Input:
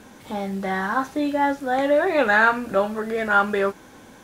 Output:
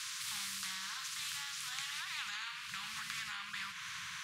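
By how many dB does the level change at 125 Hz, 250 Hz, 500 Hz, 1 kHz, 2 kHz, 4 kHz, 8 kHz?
-24.0 dB, -37.5 dB, under -40 dB, -26.0 dB, -18.5 dB, -0.5 dB, no reading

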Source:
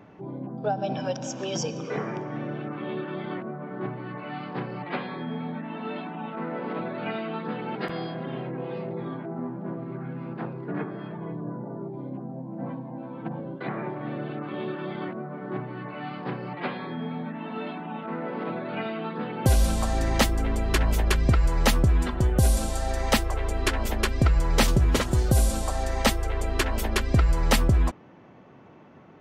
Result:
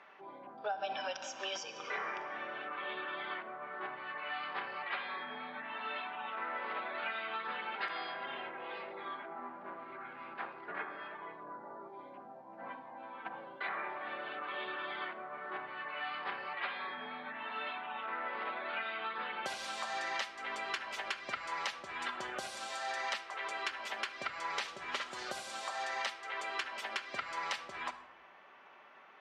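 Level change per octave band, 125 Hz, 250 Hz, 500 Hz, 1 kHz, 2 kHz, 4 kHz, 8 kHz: -39.5 dB, -24.0 dB, -14.0 dB, -5.5 dB, -3.5 dB, -8.0 dB, -15.5 dB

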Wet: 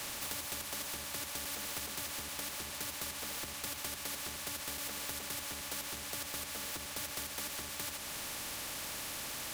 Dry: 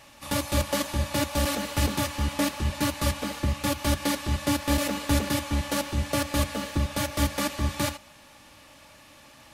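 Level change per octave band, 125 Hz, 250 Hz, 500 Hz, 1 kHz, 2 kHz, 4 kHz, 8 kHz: -24.5 dB, -22.5 dB, -18.0 dB, -14.0 dB, -9.5 dB, -7.5 dB, -4.5 dB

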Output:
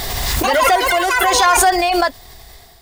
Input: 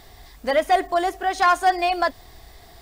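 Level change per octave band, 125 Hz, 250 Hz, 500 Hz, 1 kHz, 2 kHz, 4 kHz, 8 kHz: no reading, +7.5 dB, +5.0 dB, +5.5 dB, +9.0 dB, +12.5 dB, +21.0 dB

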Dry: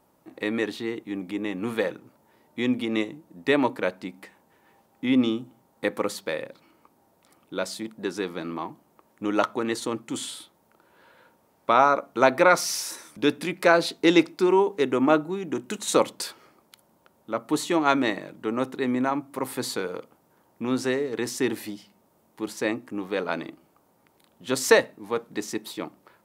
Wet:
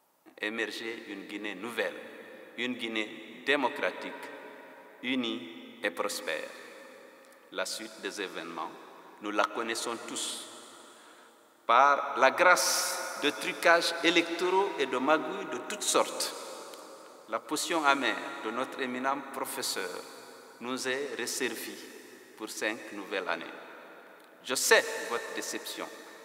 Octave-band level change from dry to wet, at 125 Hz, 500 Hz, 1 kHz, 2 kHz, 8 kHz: -15.5 dB, -6.5 dB, -2.5 dB, -1.0 dB, 0.0 dB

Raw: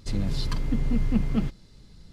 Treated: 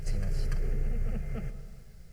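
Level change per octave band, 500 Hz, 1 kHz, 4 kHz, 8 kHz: -4.0 dB, -9.5 dB, -14.0 dB, no reading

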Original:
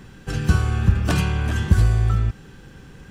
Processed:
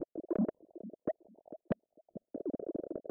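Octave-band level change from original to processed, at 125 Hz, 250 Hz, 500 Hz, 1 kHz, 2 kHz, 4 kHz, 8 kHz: -31.0 dB, -10.0 dB, -4.5 dB, -20.0 dB, -30.0 dB, under -35 dB, under -40 dB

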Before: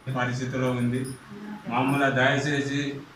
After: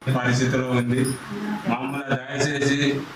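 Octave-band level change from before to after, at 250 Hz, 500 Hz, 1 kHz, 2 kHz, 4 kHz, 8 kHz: +4.0 dB, +2.5 dB, -0.5 dB, +0.5 dB, +4.0 dB, +8.5 dB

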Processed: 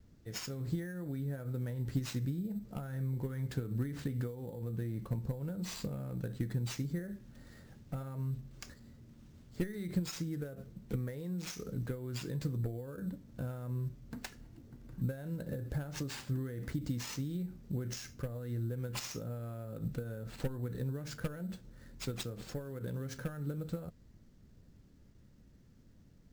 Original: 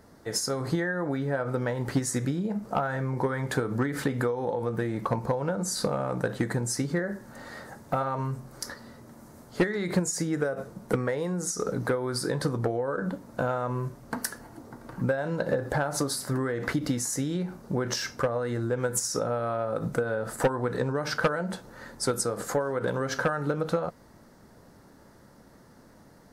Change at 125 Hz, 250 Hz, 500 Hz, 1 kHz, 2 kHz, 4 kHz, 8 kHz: -4.5 dB, -9.0 dB, -16.5 dB, -21.5 dB, -17.0 dB, -10.5 dB, -15.5 dB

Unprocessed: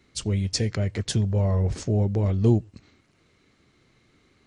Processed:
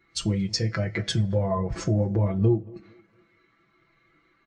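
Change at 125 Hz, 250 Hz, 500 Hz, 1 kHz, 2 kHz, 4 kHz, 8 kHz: -2.5 dB, 0.0 dB, +1.0 dB, +4.5 dB, no reading, +1.5 dB, -3.0 dB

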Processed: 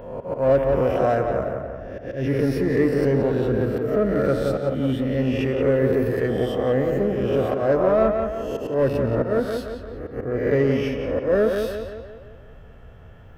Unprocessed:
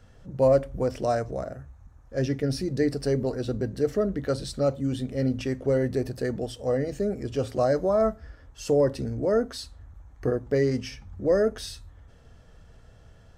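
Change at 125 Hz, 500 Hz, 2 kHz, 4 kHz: +4.5 dB, +5.0 dB, +8.0 dB, 0.0 dB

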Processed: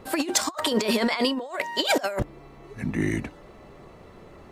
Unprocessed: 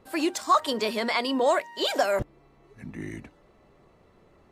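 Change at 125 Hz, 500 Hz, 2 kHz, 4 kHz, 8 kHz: +9.0 dB, -1.0 dB, +2.5 dB, +3.5 dB, +9.0 dB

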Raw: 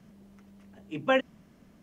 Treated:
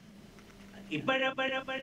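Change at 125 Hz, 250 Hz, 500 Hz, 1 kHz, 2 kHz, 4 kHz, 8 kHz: +0.5 dB, -2.0 dB, -4.0 dB, -1.5 dB, +1.5 dB, +4.0 dB, no reading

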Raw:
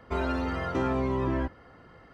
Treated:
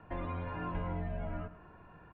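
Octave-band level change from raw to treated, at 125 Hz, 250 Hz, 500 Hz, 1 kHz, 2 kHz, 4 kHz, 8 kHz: -6.0 dB, -12.0 dB, -12.5 dB, -9.0 dB, -10.5 dB, -14.5 dB, no reading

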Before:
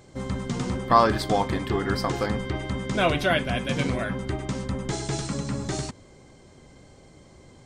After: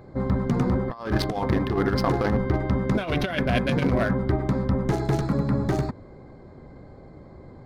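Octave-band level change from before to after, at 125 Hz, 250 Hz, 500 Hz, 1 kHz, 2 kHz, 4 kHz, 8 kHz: +5.0 dB, +4.5 dB, +1.0 dB, -4.5 dB, -2.0 dB, -4.0 dB, no reading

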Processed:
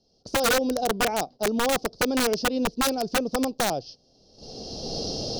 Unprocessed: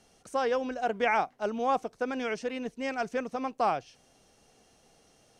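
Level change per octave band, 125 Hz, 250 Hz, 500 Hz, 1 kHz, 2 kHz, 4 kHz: +13.0 dB, +9.0 dB, +5.0 dB, +1.5 dB, +6.0 dB, +16.0 dB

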